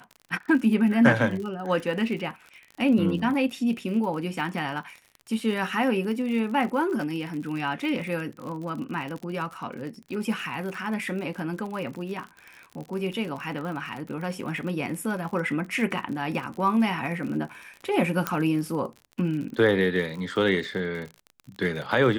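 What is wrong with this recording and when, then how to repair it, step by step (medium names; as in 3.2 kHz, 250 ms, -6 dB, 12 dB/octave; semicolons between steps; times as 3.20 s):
crackle 49 per s -33 dBFS
18.27 s: pop -9 dBFS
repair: de-click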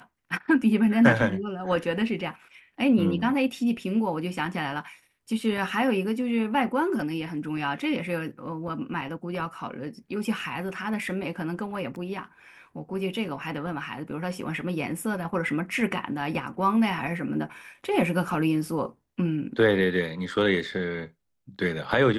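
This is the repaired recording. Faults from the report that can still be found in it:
nothing left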